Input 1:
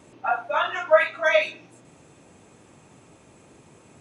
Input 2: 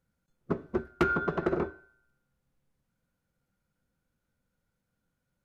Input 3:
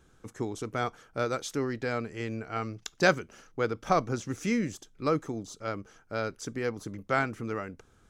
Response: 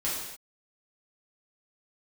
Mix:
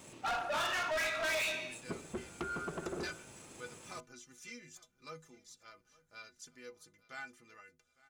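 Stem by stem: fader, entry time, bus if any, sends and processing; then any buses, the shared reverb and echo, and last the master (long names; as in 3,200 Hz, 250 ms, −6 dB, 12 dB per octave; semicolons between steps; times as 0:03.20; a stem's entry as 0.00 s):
−8.0 dB, 0.00 s, send −13 dB, no echo send, brickwall limiter −15 dBFS, peak gain reduction 9.5 dB; high-shelf EQ 2,400 Hz +11 dB; leveller curve on the samples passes 1
−3.0 dB, 1.40 s, no send, no echo send, downward compressor, threshold −31 dBFS, peak gain reduction 10.5 dB
−9.5 dB, 0.00 s, no send, echo send −22.5 dB, tilt shelving filter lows −9.5 dB, about 1,300 Hz; stiff-string resonator 74 Hz, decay 0.32 s, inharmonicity 0.03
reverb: on, pre-delay 3 ms
echo: repeating echo 856 ms, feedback 39%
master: soft clipping −32 dBFS, distortion −6 dB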